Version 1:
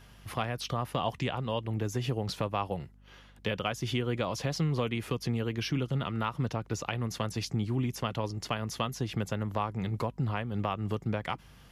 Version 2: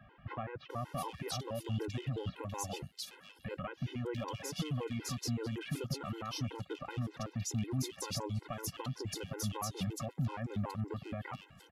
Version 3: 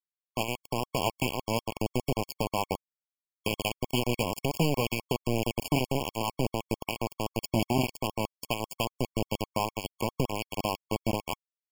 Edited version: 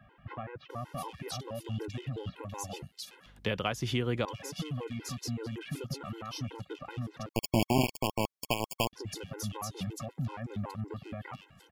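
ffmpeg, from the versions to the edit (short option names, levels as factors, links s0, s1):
-filter_complex "[1:a]asplit=3[s0][s1][s2];[s0]atrim=end=3.262[s3];[0:a]atrim=start=3.258:end=4.252[s4];[s1]atrim=start=4.248:end=7.292[s5];[2:a]atrim=start=7.288:end=8.932[s6];[s2]atrim=start=8.928[s7];[s3][s4]acrossfade=d=0.004:c1=hsin:c2=hsin[s8];[s8][s5]acrossfade=d=0.004:c1=hsin:c2=hsin[s9];[s9][s6]acrossfade=d=0.004:c1=hsin:c2=hsin[s10];[s10][s7]acrossfade=d=0.004:c1=hsin:c2=hsin"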